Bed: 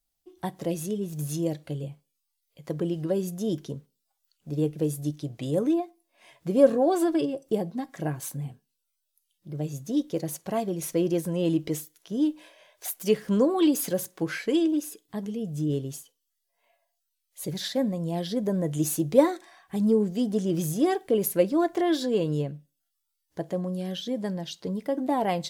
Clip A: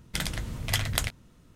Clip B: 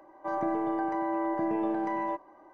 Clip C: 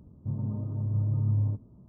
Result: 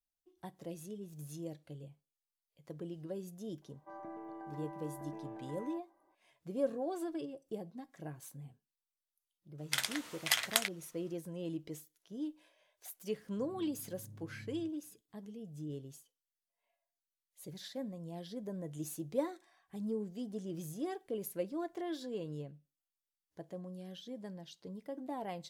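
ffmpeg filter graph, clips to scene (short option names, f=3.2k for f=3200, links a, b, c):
-filter_complex "[0:a]volume=-15.5dB[a];[1:a]highpass=800[b];[3:a]bandpass=f=260:t=q:w=1.1:csg=0[c];[2:a]atrim=end=2.53,asetpts=PTS-STARTPTS,volume=-17.5dB,afade=t=in:d=0.004:c=hsin,afade=t=out:st=2.526:d=0.004:c=hsin,adelay=3620[d];[b]atrim=end=1.55,asetpts=PTS-STARTPTS,volume=-1.5dB,afade=t=in:d=0.004:c=hsin,afade=t=out:st=1.546:d=0.004:c=hsin,adelay=9580[e];[c]atrim=end=1.88,asetpts=PTS-STARTPTS,volume=-18dB,afade=t=in:d=0.004:c=hsin,afade=t=out:st=1.876:d=0.004:c=hsin,adelay=13130[f];[a][d][e][f]amix=inputs=4:normalize=0"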